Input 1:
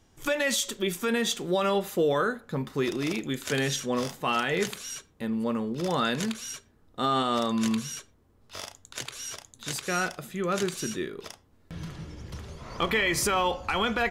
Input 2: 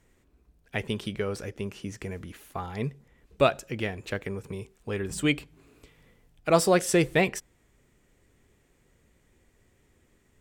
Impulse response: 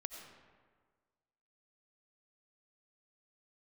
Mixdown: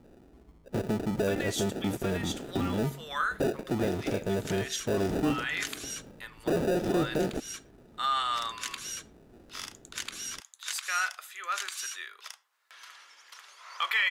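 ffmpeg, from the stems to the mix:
-filter_complex "[0:a]highpass=frequency=1200:width=0.5412,highpass=frequency=1200:width=1.3066,adelay=1000,volume=-0.5dB[link_01];[1:a]acompressor=threshold=-30dB:ratio=4,acrusher=samples=41:mix=1:aa=0.000001,asoftclip=type=tanh:threshold=-35dB,volume=3dB,asplit=2[link_02][link_03];[link_03]apad=whole_len=666069[link_04];[link_01][link_04]sidechaincompress=threshold=-45dB:ratio=8:attack=11:release=223[link_05];[link_05][link_02]amix=inputs=2:normalize=0,equalizer=frequency=330:width_type=o:width=2.5:gain=11"

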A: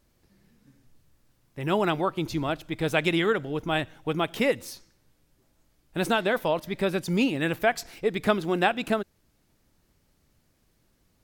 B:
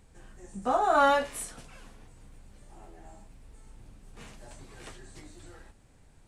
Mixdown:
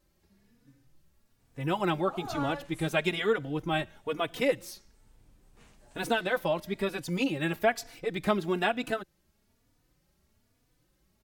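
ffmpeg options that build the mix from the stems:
ffmpeg -i stem1.wav -i stem2.wav -filter_complex "[0:a]asplit=2[link_01][link_02];[link_02]adelay=3.4,afreqshift=1.1[link_03];[link_01][link_03]amix=inputs=2:normalize=1,volume=-0.5dB,asplit=2[link_04][link_05];[1:a]adelay=1400,volume=-10.5dB[link_06];[link_05]apad=whole_len=338400[link_07];[link_06][link_07]sidechaincompress=threshold=-30dB:ratio=8:attack=12:release=631[link_08];[link_04][link_08]amix=inputs=2:normalize=0" out.wav

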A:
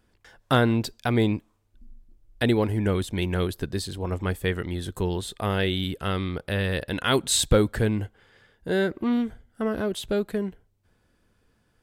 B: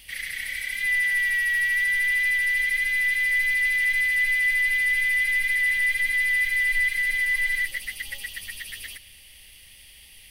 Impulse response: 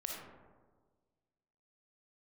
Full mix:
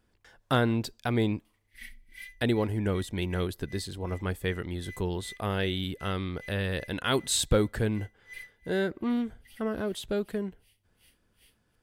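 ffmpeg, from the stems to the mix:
-filter_complex "[0:a]volume=-4.5dB,asplit=2[link_01][link_02];[1:a]asoftclip=type=tanh:threshold=-19.5dB,aeval=exprs='val(0)*pow(10,-37*(0.5-0.5*cos(2*PI*2.6*n/s))/20)':channel_layout=same,adelay=1450,volume=-11dB[link_03];[link_02]apad=whole_len=518326[link_04];[link_03][link_04]sidechaincompress=threshold=-44dB:ratio=3:attack=8.7:release=333[link_05];[link_01][link_05]amix=inputs=2:normalize=0"

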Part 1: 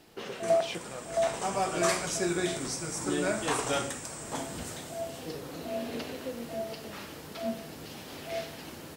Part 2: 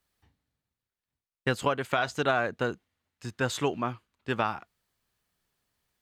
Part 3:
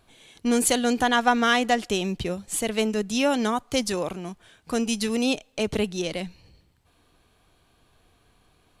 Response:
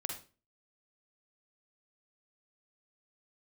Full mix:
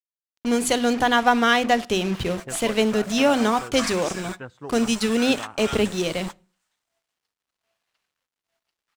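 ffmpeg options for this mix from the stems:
-filter_complex "[0:a]highpass=frequency=940:width=0.5412,highpass=frequency=940:width=1.3066,acrusher=bits=6:mix=0:aa=0.000001,adelay=1950,volume=1.5dB[link_01];[1:a]afwtdn=0.0224,adelay=1000,volume=-9.5dB,asplit=2[link_02][link_03];[link_03]volume=-23dB[link_04];[2:a]bandreject=frequency=50:width_type=h:width=6,bandreject=frequency=100:width_type=h:width=6,bandreject=frequency=150:width_type=h:width=6,bandreject=frequency=200:width_type=h:width=6,bandreject=frequency=250:width_type=h:width=6,bandreject=frequency=300:width_type=h:width=6,bandreject=frequency=350:width_type=h:width=6,dynaudnorm=framelen=120:gausssize=9:maxgain=5dB,acrusher=bits=4:mix=0:aa=0.5,volume=-2dB,asplit=3[link_05][link_06][link_07];[link_06]volume=-15.5dB[link_08];[link_07]apad=whole_len=481207[link_09];[link_01][link_09]sidechaingate=range=-33dB:threshold=-33dB:ratio=16:detection=peak[link_10];[3:a]atrim=start_sample=2205[link_11];[link_04][link_08]amix=inputs=2:normalize=0[link_12];[link_12][link_11]afir=irnorm=-1:irlink=0[link_13];[link_10][link_02][link_05][link_13]amix=inputs=4:normalize=0,highshelf=frequency=8900:gain=-11.5"

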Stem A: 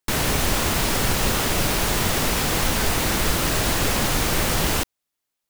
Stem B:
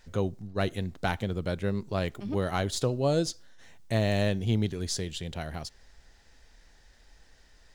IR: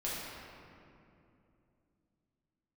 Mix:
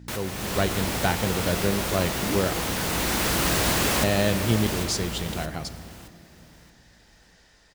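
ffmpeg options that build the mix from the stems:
-filter_complex "[0:a]aeval=exprs='val(0)+0.0316*(sin(2*PI*60*n/s)+sin(2*PI*2*60*n/s)/2+sin(2*PI*3*60*n/s)/3+sin(2*PI*4*60*n/s)/4+sin(2*PI*5*60*n/s)/5)':channel_layout=same,volume=-10dB,asplit=3[link_01][link_02][link_03];[link_02]volume=-13dB[link_04];[link_03]volume=-12.5dB[link_05];[1:a]volume=-4dB,asplit=3[link_06][link_07][link_08];[link_06]atrim=end=2.53,asetpts=PTS-STARTPTS,afade=type=out:start_time=2.526:duration=0.004:curve=hsin[link_09];[link_07]atrim=start=2.53:end=4.03,asetpts=PTS-STARTPTS,volume=0[link_10];[link_08]atrim=start=4.03,asetpts=PTS-STARTPTS,afade=type=in:duration=0.004:curve=hsin[link_11];[link_09][link_10][link_11]concat=n=3:v=0:a=1,asplit=3[link_12][link_13][link_14];[link_13]volume=-15dB[link_15];[link_14]apad=whole_len=242275[link_16];[link_01][link_16]sidechaincompress=threshold=-37dB:ratio=8:attack=16:release=1250[link_17];[2:a]atrim=start_sample=2205[link_18];[link_04][link_15]amix=inputs=2:normalize=0[link_19];[link_19][link_18]afir=irnorm=-1:irlink=0[link_20];[link_05]aecho=0:1:622|1244|1866|2488:1|0.29|0.0841|0.0244[link_21];[link_17][link_12][link_20][link_21]amix=inputs=4:normalize=0,highpass=frequency=110:poles=1,dynaudnorm=framelen=110:gausssize=7:maxgain=8dB"

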